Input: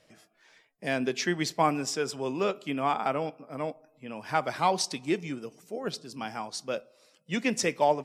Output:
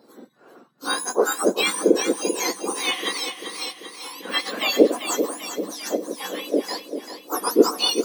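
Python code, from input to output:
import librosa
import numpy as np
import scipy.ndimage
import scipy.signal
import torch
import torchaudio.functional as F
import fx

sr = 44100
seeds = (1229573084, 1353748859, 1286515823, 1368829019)

y = fx.octave_mirror(x, sr, pivot_hz=1600.0)
y = scipy.signal.sosfilt(scipy.signal.butter(2, 240.0, 'highpass', fs=sr, output='sos'), y)
y = fx.low_shelf(y, sr, hz=460.0, db=12.0)
y = fx.echo_feedback(y, sr, ms=391, feedback_pct=57, wet_db=-9)
y = y * librosa.db_to_amplitude(6.0)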